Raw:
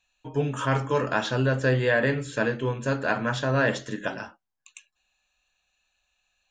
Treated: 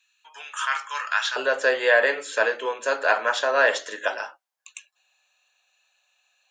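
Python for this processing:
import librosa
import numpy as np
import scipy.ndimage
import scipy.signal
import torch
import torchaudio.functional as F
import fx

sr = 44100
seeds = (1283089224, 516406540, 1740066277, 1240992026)

y = fx.highpass(x, sr, hz=fx.steps((0.0, 1200.0), (1.36, 500.0)), slope=24)
y = y * librosa.db_to_amplitude(6.0)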